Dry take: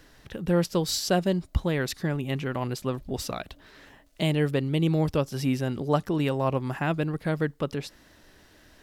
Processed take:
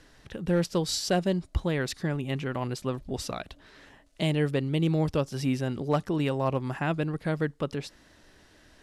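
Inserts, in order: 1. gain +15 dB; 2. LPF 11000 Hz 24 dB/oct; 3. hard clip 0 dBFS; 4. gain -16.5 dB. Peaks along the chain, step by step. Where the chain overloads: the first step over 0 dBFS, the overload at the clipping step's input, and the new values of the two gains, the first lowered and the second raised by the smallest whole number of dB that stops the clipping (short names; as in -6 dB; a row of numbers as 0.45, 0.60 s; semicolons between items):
+4.5, +4.5, 0.0, -16.5 dBFS; step 1, 4.5 dB; step 1 +10 dB, step 4 -11.5 dB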